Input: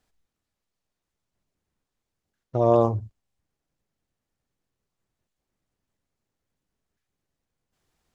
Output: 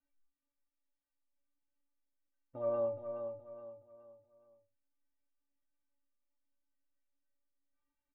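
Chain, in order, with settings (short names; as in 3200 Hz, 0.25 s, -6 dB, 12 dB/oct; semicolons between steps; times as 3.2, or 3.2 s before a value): LPF 2600 Hz 24 dB/oct; metallic resonator 280 Hz, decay 0.3 s, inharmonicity 0.008; on a send: feedback echo 0.421 s, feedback 37%, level -7.5 dB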